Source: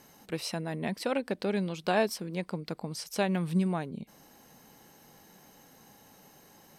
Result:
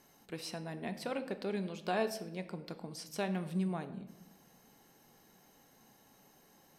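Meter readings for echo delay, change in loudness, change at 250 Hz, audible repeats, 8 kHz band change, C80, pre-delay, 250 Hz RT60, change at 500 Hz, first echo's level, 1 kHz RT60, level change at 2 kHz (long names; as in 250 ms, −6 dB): no echo audible, −7.0 dB, −6.5 dB, no echo audible, −7.0 dB, 15.0 dB, 3 ms, 1.3 s, −6.5 dB, no echo audible, 0.85 s, −7.0 dB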